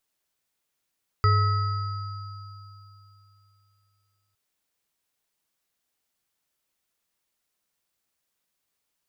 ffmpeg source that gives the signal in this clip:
-f lavfi -i "aevalsrc='0.141*pow(10,-3*t/3.16)*sin(2*PI*100*t)+0.0316*pow(10,-3*t/1.2)*sin(2*PI*424*t)+0.0944*pow(10,-3*t/2.97)*sin(2*PI*1290*t)+0.02*pow(10,-3*t/1.42)*sin(2*PI*1950*t)+0.0211*pow(10,-3*t/3.58)*sin(2*PI*4800*t)':d=3.11:s=44100"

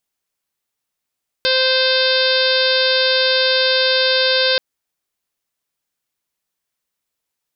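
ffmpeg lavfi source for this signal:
-f lavfi -i "aevalsrc='0.126*sin(2*PI*520*t)+0.0282*sin(2*PI*1040*t)+0.0891*sin(2*PI*1560*t)+0.0316*sin(2*PI*2080*t)+0.0562*sin(2*PI*2600*t)+0.0501*sin(2*PI*3120*t)+0.106*sin(2*PI*3640*t)+0.0708*sin(2*PI*4160*t)+0.0891*sin(2*PI*4680*t)+0.0422*sin(2*PI*5200*t)':d=3.13:s=44100"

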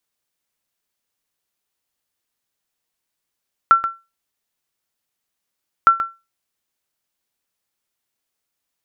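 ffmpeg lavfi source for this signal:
-f lavfi -i "aevalsrc='0.75*(sin(2*PI*1350*mod(t,2.16))*exp(-6.91*mod(t,2.16)/0.25)+0.299*sin(2*PI*1350*max(mod(t,2.16)-0.13,0))*exp(-6.91*max(mod(t,2.16)-0.13,0)/0.25))':d=4.32:s=44100"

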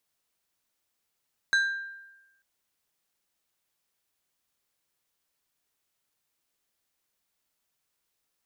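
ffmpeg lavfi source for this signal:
-f lavfi -i "aevalsrc='0.119*pow(10,-3*t/1.05)*sin(2*PI*1590*t)+0.0422*pow(10,-3*t/0.553)*sin(2*PI*3975*t)+0.015*pow(10,-3*t/0.398)*sin(2*PI*6360*t)+0.00531*pow(10,-3*t/0.34)*sin(2*PI*7950*t)+0.00188*pow(10,-3*t/0.283)*sin(2*PI*10335*t)':d=0.89:s=44100"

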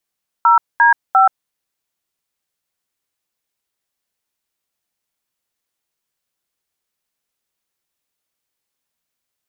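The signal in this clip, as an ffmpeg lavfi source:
-f lavfi -i "aevalsrc='0.316*clip(min(mod(t,0.349),0.129-mod(t,0.349))/0.002,0,1)*(eq(floor(t/0.349),0)*(sin(2*PI*941*mod(t,0.349))+sin(2*PI*1336*mod(t,0.349)))+eq(floor(t/0.349),1)*(sin(2*PI*941*mod(t,0.349))+sin(2*PI*1633*mod(t,0.349)))+eq(floor(t/0.349),2)*(sin(2*PI*770*mod(t,0.349))+sin(2*PI*1336*mod(t,0.349))))':d=1.047:s=44100"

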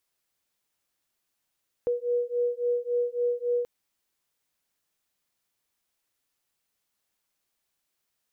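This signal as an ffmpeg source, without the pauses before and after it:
-f lavfi -i "aevalsrc='0.0422*(sin(2*PI*482*t)+sin(2*PI*485.6*t))':d=1.78:s=44100"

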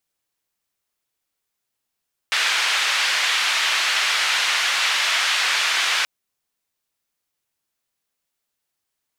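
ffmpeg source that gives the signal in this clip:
-f lavfi -i "anoisesrc=c=white:d=3.73:r=44100:seed=1,highpass=f=1400,lowpass=f=3200,volume=-5.3dB"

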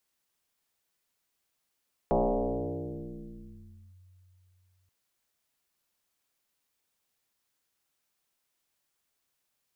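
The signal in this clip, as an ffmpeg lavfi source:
-f lavfi -i "aevalsrc='0.0891*pow(10,-3*t/3.5)*sin(2*PI*91.6*t+6*clip(1-t/1.85,0,1)*sin(2*PI*1.35*91.6*t))':d=2.78:s=44100"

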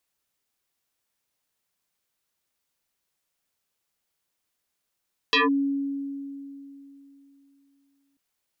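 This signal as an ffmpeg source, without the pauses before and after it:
-f lavfi -i "aevalsrc='0.158*pow(10,-3*t/3.19)*sin(2*PI*278*t+6*clip(1-t/0.16,0,1)*sin(2*PI*2.62*278*t))':d=2.84:s=44100"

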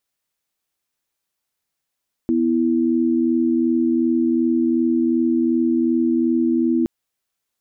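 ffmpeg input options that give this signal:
-f lavfi -i "aevalsrc='0.126*(sin(2*PI*246.94*t)+sin(2*PI*329.63*t))':d=4.57:s=44100"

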